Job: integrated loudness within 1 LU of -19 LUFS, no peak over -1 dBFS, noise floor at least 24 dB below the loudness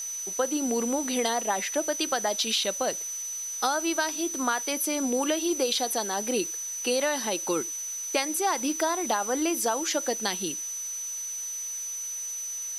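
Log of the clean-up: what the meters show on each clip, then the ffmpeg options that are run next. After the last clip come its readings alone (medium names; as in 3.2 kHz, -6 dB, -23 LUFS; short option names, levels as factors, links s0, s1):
steady tone 6 kHz; tone level -32 dBFS; noise floor -35 dBFS; noise floor target -52 dBFS; loudness -27.5 LUFS; peak level -11.5 dBFS; loudness target -19.0 LUFS
-> -af "bandreject=f=6000:w=30"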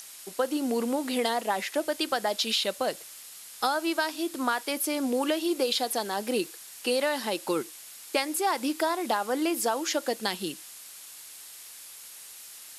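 steady tone not found; noise floor -46 dBFS; noise floor target -53 dBFS
-> -af "afftdn=nr=7:nf=-46"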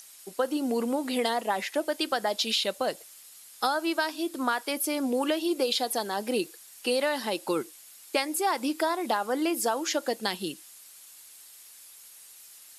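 noise floor -51 dBFS; noise floor target -53 dBFS
-> -af "afftdn=nr=6:nf=-51"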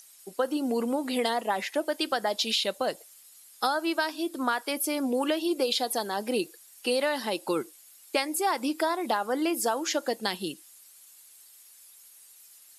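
noise floor -54 dBFS; loudness -28.5 LUFS; peak level -12.5 dBFS; loudness target -19.0 LUFS
-> -af "volume=2.99"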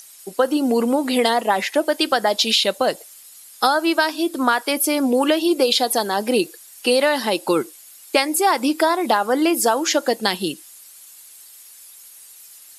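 loudness -19.0 LUFS; peak level -3.0 dBFS; noise floor -45 dBFS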